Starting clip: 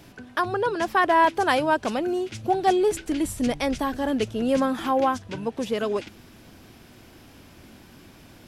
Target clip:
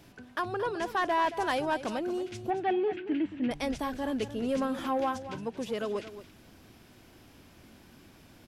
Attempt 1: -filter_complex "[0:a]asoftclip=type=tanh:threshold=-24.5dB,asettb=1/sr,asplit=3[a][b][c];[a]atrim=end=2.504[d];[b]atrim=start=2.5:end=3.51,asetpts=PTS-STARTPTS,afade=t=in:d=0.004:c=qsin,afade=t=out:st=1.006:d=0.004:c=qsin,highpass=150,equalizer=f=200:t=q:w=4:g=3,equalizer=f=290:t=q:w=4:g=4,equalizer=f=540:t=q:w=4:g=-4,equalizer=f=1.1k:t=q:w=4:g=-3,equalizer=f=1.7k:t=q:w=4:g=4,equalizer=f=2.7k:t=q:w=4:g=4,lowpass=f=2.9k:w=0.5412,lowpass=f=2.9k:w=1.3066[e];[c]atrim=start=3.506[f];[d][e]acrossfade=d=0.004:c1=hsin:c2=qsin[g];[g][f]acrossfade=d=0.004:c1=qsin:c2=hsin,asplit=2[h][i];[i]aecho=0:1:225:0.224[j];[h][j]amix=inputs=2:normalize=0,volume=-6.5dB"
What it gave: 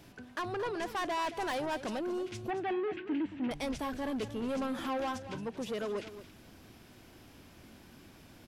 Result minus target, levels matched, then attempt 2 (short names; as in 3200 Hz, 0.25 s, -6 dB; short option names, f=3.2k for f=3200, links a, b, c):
soft clip: distortion +10 dB
-filter_complex "[0:a]asoftclip=type=tanh:threshold=-14dB,asettb=1/sr,asplit=3[a][b][c];[a]atrim=end=2.504[d];[b]atrim=start=2.5:end=3.51,asetpts=PTS-STARTPTS,afade=t=in:d=0.004:c=qsin,afade=t=out:st=1.006:d=0.004:c=qsin,highpass=150,equalizer=f=200:t=q:w=4:g=3,equalizer=f=290:t=q:w=4:g=4,equalizer=f=540:t=q:w=4:g=-4,equalizer=f=1.1k:t=q:w=4:g=-3,equalizer=f=1.7k:t=q:w=4:g=4,equalizer=f=2.7k:t=q:w=4:g=4,lowpass=f=2.9k:w=0.5412,lowpass=f=2.9k:w=1.3066[e];[c]atrim=start=3.506[f];[d][e]acrossfade=d=0.004:c1=hsin:c2=qsin[g];[g][f]acrossfade=d=0.004:c1=qsin:c2=hsin,asplit=2[h][i];[i]aecho=0:1:225:0.224[j];[h][j]amix=inputs=2:normalize=0,volume=-6.5dB"